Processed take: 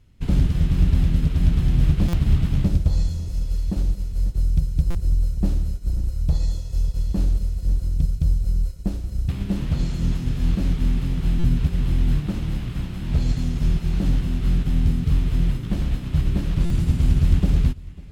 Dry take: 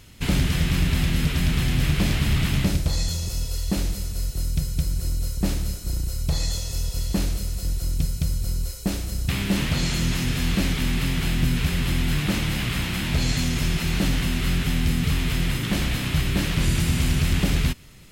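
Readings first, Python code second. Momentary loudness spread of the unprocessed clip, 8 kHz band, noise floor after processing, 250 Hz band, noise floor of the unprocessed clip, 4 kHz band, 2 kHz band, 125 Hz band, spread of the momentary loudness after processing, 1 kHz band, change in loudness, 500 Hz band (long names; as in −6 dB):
6 LU, −14.5 dB, −33 dBFS, −0.5 dB, −33 dBFS, −13.0 dB, −13.5 dB, +2.0 dB, 7 LU, −7.5 dB, +1.0 dB, −3.5 dB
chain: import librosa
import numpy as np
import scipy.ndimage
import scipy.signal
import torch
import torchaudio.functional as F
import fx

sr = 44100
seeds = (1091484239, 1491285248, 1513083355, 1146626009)

y = fx.tilt_eq(x, sr, slope=-2.5)
y = fx.echo_feedback(y, sr, ms=547, feedback_pct=56, wet_db=-16.0)
y = fx.dynamic_eq(y, sr, hz=2100.0, q=1.5, threshold_db=-46.0, ratio=4.0, max_db=-5)
y = fx.buffer_glitch(y, sr, at_s=(2.08, 4.9, 11.39, 16.65), block=256, repeats=8)
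y = fx.upward_expand(y, sr, threshold_db=-28.0, expansion=1.5)
y = F.gain(torch.from_numpy(y), -4.0).numpy()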